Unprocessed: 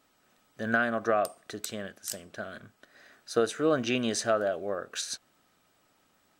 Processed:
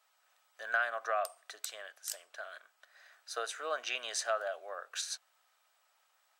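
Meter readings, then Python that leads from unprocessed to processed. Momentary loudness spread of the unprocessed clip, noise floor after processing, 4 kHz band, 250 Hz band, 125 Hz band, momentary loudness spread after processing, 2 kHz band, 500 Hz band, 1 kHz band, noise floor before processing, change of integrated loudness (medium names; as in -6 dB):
13 LU, -74 dBFS, -3.5 dB, -33.0 dB, under -40 dB, 14 LU, -3.5 dB, -10.5 dB, -4.5 dB, -69 dBFS, -7.0 dB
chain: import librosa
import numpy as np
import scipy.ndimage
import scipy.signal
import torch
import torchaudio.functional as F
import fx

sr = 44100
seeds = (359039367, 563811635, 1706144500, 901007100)

y = scipy.signal.sosfilt(scipy.signal.butter(4, 680.0, 'highpass', fs=sr, output='sos'), x)
y = y * librosa.db_to_amplitude(-3.5)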